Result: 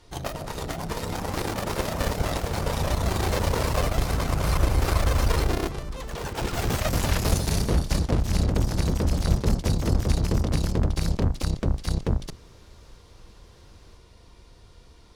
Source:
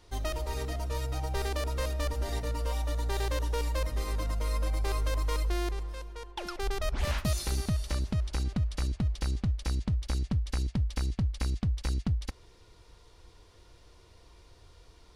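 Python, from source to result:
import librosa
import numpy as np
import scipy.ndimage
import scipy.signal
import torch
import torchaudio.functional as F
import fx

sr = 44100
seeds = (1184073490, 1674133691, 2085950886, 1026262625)

y = fx.octave_divider(x, sr, octaves=1, level_db=0.0)
y = fx.cheby_harmonics(y, sr, harmonics=(7,), levels_db=(-9,), full_scale_db=-15.5)
y = fx.echo_pitch(y, sr, ms=472, semitones=2, count=3, db_per_echo=-3.0)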